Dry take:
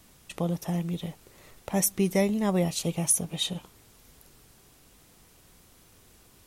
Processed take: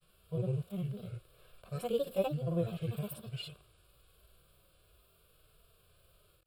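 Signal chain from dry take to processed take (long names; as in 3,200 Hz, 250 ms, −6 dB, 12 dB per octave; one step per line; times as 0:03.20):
granular cloud, grains 20 per second, pitch spread up and down by 7 semitones
harmonic and percussive parts rebalanced percussive −17 dB
phaser with its sweep stopped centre 1,300 Hz, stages 8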